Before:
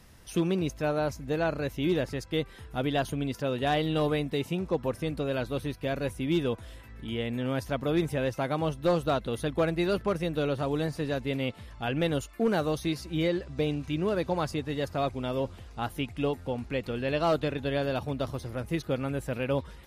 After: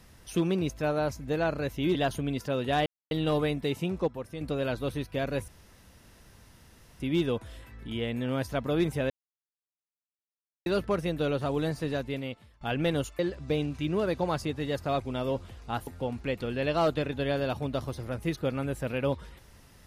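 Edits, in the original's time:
0:01.95–0:02.89: remove
0:03.80: splice in silence 0.25 s
0:04.77–0:05.10: clip gain −7.5 dB
0:06.17: splice in room tone 1.52 s
0:08.27–0:09.83: silence
0:11.07–0:11.78: fade out, to −20 dB
0:12.36–0:13.28: remove
0:15.96–0:16.33: remove

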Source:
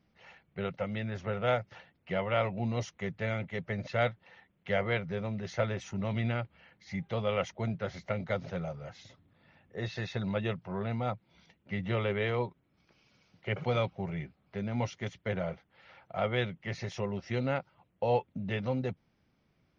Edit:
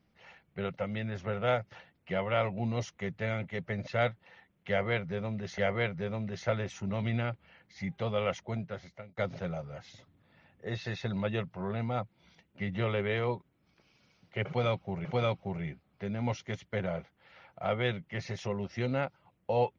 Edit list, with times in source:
0:04.69–0:05.58: repeat, 2 plays
0:07.20–0:08.28: fade out equal-power
0:13.58–0:14.16: repeat, 2 plays

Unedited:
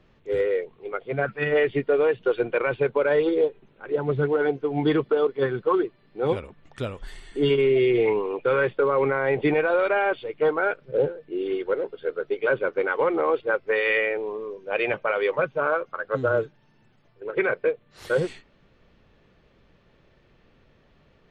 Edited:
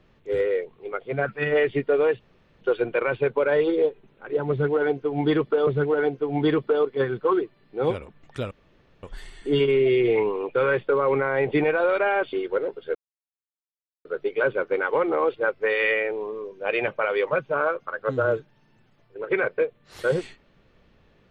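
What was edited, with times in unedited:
0:02.20: splice in room tone 0.41 s
0:04.09–0:05.26: repeat, 2 plays
0:06.93: splice in room tone 0.52 s
0:10.23–0:11.49: remove
0:12.11: splice in silence 1.10 s

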